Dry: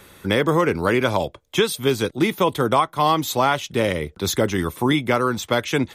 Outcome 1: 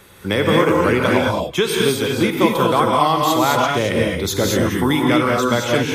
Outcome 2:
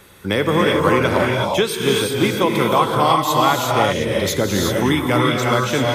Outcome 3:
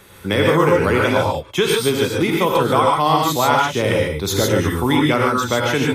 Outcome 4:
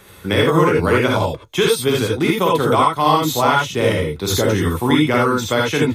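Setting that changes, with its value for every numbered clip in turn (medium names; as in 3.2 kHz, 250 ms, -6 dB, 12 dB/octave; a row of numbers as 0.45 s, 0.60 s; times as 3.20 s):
gated-style reverb, gate: 250 ms, 400 ms, 170 ms, 100 ms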